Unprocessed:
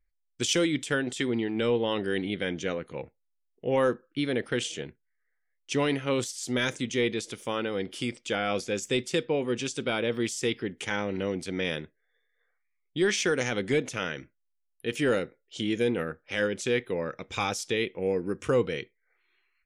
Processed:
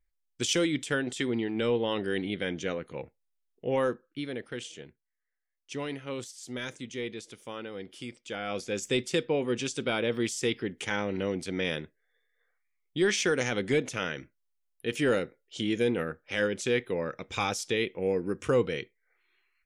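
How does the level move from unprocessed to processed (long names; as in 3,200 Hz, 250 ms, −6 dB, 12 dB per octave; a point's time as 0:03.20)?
0:03.65 −1.5 dB
0:04.46 −9 dB
0:08.23 −9 dB
0:08.86 −0.5 dB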